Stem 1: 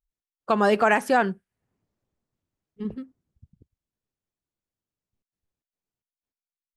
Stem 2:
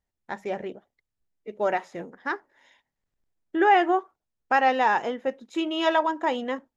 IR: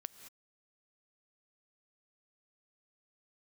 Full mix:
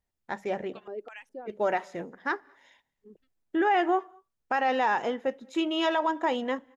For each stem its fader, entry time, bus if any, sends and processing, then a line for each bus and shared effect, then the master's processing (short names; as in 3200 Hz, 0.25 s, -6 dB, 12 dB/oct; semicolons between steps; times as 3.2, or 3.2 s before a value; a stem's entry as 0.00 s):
-13.5 dB, 0.25 s, no send, reverb removal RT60 1.8 s; LFO band-pass square 2.4 Hz 400–3000 Hz
-1.5 dB, 0.00 s, send -13 dB, dry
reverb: on, pre-delay 3 ms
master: limiter -17 dBFS, peak gain reduction 7 dB